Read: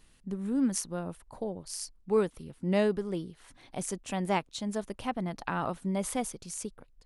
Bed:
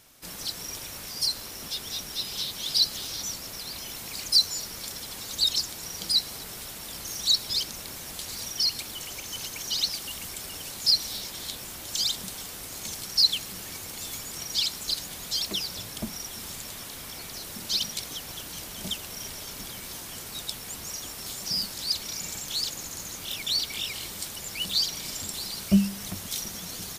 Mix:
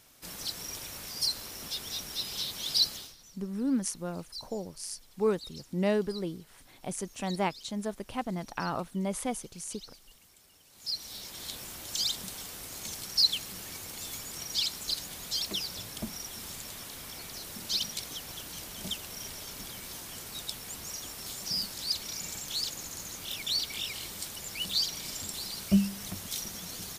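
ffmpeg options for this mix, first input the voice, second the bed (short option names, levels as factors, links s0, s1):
-filter_complex "[0:a]adelay=3100,volume=0.891[s0];[1:a]volume=6.31,afade=t=out:st=2.86:d=0.29:silence=0.105925,afade=t=in:st=10.69:d=0.88:silence=0.112202[s1];[s0][s1]amix=inputs=2:normalize=0"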